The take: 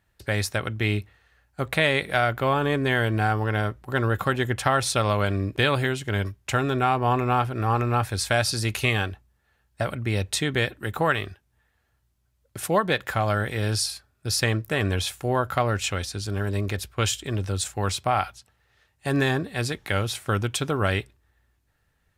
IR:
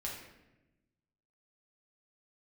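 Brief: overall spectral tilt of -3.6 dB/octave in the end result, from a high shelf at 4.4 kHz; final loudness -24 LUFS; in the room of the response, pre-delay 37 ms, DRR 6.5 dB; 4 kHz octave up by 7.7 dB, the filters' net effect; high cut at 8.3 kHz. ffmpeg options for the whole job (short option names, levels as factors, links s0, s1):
-filter_complex "[0:a]lowpass=8300,equalizer=f=4000:t=o:g=6.5,highshelf=f=4400:g=6.5,asplit=2[s0][s1];[1:a]atrim=start_sample=2205,adelay=37[s2];[s1][s2]afir=irnorm=-1:irlink=0,volume=0.447[s3];[s0][s3]amix=inputs=2:normalize=0,volume=0.794"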